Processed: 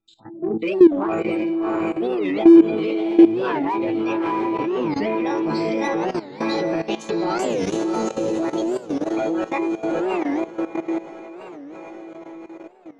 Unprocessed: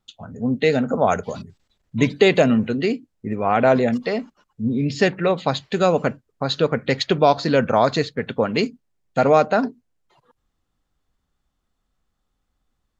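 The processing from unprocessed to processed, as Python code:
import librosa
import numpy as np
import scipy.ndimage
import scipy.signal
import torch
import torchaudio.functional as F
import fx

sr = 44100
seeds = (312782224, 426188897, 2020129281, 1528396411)

p1 = fx.pitch_ramps(x, sr, semitones=8.5, every_ms=540)
p2 = fx.resonator_bank(p1, sr, root=45, chord='fifth', decay_s=0.39)
p3 = fx.small_body(p2, sr, hz=(350.0, 2400.0), ring_ms=40, db=16)
p4 = fx.spec_gate(p3, sr, threshold_db=-30, keep='strong')
p5 = 10.0 ** (-28.5 / 20.0) * np.tanh(p4 / 10.0 ** (-28.5 / 20.0))
p6 = p4 + F.gain(torch.from_numpy(p5), -5.5).numpy()
p7 = fx.spec_erase(p6, sr, start_s=7.47, length_s=0.91, low_hz=620.0, high_hz=6100.0)
p8 = p7 + fx.echo_diffused(p7, sr, ms=690, feedback_pct=56, wet_db=-3, dry=0)
p9 = fx.level_steps(p8, sr, step_db=15)
p10 = fx.record_warp(p9, sr, rpm=45.0, depth_cents=250.0)
y = F.gain(torch.from_numpy(p10), 8.0).numpy()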